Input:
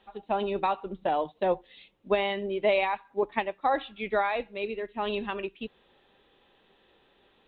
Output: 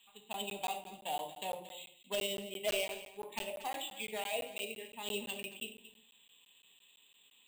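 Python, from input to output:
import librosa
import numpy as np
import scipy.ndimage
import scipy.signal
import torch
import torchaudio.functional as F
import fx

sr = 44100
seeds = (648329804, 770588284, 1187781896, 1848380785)

y = fx.self_delay(x, sr, depth_ms=0.11)
y = fx.curve_eq(y, sr, hz=(140.0, 680.0, 1400.0, 2800.0), db=(0, -20, -25, 14))
y = fx.auto_wah(y, sr, base_hz=480.0, top_hz=1100.0, q=4.9, full_db=-21.5, direction='down')
y = 10.0 ** (-39.0 / 20.0) * (np.abs((y / 10.0 ** (-39.0 / 20.0) + 3.0) % 4.0 - 2.0) - 1.0)
y = y + 10.0 ** (-14.5 / 20.0) * np.pad(y, (int(228 * sr / 1000.0), 0))[:len(y)]
y = fx.room_shoebox(y, sr, seeds[0], volume_m3=750.0, walls='furnished', distance_m=1.7)
y = np.repeat(y[::4], 4)[:len(y)]
y = fx.buffer_crackle(y, sr, first_s=0.33, period_s=0.17, block=512, kind='zero')
y = y * librosa.db_to_amplitude(12.5)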